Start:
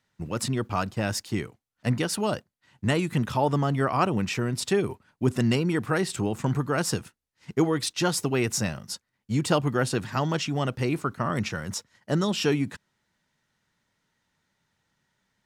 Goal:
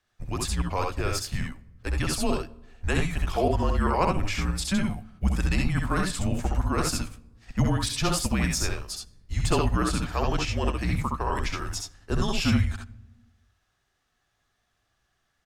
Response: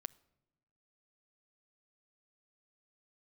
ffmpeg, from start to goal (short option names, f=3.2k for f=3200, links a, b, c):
-filter_complex "[0:a]aecho=1:1:66|80:0.668|0.398,afreqshift=-190[a];[1:a]atrim=start_sample=2205,asetrate=35721,aresample=44100[b];[a][b]afir=irnorm=-1:irlink=0,volume=2dB"